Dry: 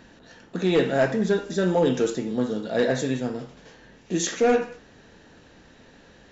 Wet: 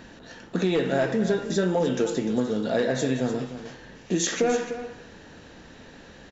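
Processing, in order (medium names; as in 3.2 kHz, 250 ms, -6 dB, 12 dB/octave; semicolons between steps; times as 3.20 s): compression 6:1, threshold -25 dBFS, peak gain reduction 9.5 dB; delay 299 ms -12 dB; trim +4.5 dB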